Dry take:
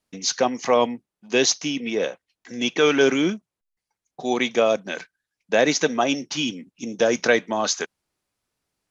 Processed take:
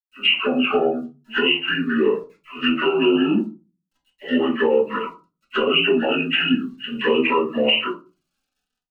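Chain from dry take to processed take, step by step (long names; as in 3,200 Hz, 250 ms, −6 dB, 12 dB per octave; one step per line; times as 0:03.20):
partials spread apart or drawn together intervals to 75%
all-pass dispersion lows, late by 54 ms, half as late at 1,200 Hz
automatic gain control gain up to 5 dB
Bessel high-pass filter 190 Hz, order 2
spectral tilt +2 dB per octave
bit reduction 11 bits
downward compressor 16 to 1, threshold −20 dBFS, peak gain reduction 11.5 dB
flanger swept by the level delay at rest 4 ms, full sweep at −21 dBFS
dynamic equaliser 2,800 Hz, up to +5 dB, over −40 dBFS, Q 3.7
convolution reverb RT60 0.30 s, pre-delay 3 ms, DRR −6.5 dB
boost into a limiter +5.5 dB
phaser whose notches keep moving one way rising 0.39 Hz
level −5.5 dB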